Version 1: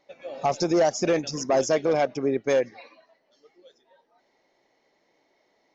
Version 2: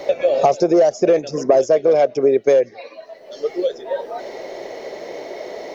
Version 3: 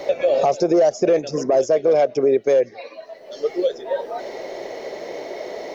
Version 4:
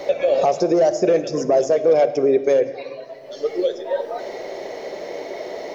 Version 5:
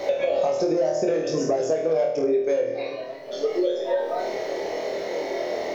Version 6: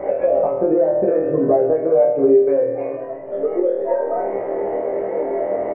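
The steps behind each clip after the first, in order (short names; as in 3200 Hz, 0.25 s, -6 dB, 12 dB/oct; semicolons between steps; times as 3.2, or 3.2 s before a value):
band shelf 500 Hz +10 dB 1.1 oct; three-band squash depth 100%
limiter -9 dBFS, peak gain reduction 7.5 dB
reverb RT60 1.6 s, pre-delay 10 ms, DRR 10.5 dB
on a send: flutter echo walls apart 4.3 m, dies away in 0.47 s; on the sum: compressor 5:1, threshold -20 dBFS, peak gain reduction 11.5 dB
Gaussian blur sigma 5.9 samples; doubler 15 ms -2 dB; gain +5 dB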